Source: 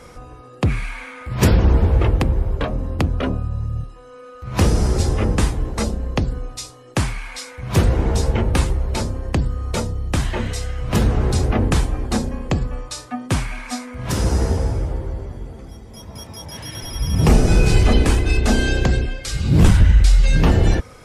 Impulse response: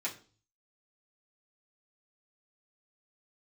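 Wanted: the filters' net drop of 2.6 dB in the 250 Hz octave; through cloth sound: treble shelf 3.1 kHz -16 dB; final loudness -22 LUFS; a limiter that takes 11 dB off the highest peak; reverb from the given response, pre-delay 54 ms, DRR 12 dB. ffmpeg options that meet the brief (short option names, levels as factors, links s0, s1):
-filter_complex "[0:a]equalizer=f=250:t=o:g=-3.5,alimiter=limit=0.188:level=0:latency=1,asplit=2[s0][s1];[1:a]atrim=start_sample=2205,adelay=54[s2];[s1][s2]afir=irnorm=-1:irlink=0,volume=0.178[s3];[s0][s3]amix=inputs=2:normalize=0,highshelf=f=3100:g=-16,volume=1.58"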